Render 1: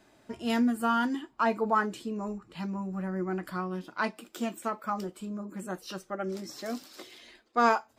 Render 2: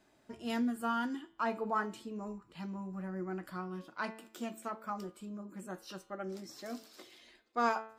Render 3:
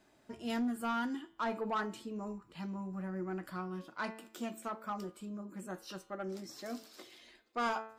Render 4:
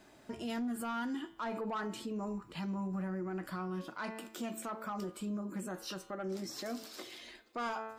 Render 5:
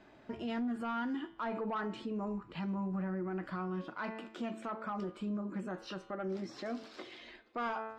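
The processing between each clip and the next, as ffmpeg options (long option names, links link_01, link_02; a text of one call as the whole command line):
ffmpeg -i in.wav -af "bandreject=frequency=110.7:width_type=h:width=4,bandreject=frequency=221.4:width_type=h:width=4,bandreject=frequency=332.1:width_type=h:width=4,bandreject=frequency=442.8:width_type=h:width=4,bandreject=frequency=553.5:width_type=h:width=4,bandreject=frequency=664.2:width_type=h:width=4,bandreject=frequency=774.9:width_type=h:width=4,bandreject=frequency=885.6:width_type=h:width=4,bandreject=frequency=996.3:width_type=h:width=4,bandreject=frequency=1107:width_type=h:width=4,bandreject=frequency=1217.7:width_type=h:width=4,bandreject=frequency=1328.4:width_type=h:width=4,bandreject=frequency=1439.1:width_type=h:width=4,bandreject=frequency=1549.8:width_type=h:width=4,bandreject=frequency=1660.5:width_type=h:width=4,bandreject=frequency=1771.2:width_type=h:width=4,bandreject=frequency=1881.9:width_type=h:width=4,bandreject=frequency=1992.6:width_type=h:width=4,bandreject=frequency=2103.3:width_type=h:width=4,bandreject=frequency=2214:width_type=h:width=4,bandreject=frequency=2324.7:width_type=h:width=4,bandreject=frequency=2435.4:width_type=h:width=4,bandreject=frequency=2546.1:width_type=h:width=4,bandreject=frequency=2656.8:width_type=h:width=4,bandreject=frequency=2767.5:width_type=h:width=4,bandreject=frequency=2878.2:width_type=h:width=4,bandreject=frequency=2988.9:width_type=h:width=4,bandreject=frequency=3099.6:width_type=h:width=4,bandreject=frequency=3210.3:width_type=h:width=4,bandreject=frequency=3321:width_type=h:width=4,bandreject=frequency=3431.7:width_type=h:width=4,bandreject=frequency=3542.4:width_type=h:width=4,bandreject=frequency=3653.1:width_type=h:width=4,bandreject=frequency=3763.8:width_type=h:width=4,bandreject=frequency=3874.5:width_type=h:width=4,bandreject=frequency=3985.2:width_type=h:width=4,bandreject=frequency=4095.9:width_type=h:width=4,bandreject=frequency=4206.6:width_type=h:width=4,bandreject=frequency=4317.3:width_type=h:width=4,volume=-7dB" out.wav
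ffmpeg -i in.wav -af "asoftclip=type=tanh:threshold=-29dB,volume=1dB" out.wav
ffmpeg -i in.wav -af "alimiter=level_in=15.5dB:limit=-24dB:level=0:latency=1:release=97,volume=-15.5dB,volume=7.5dB" out.wav
ffmpeg -i in.wav -af "lowpass=3100,volume=1dB" out.wav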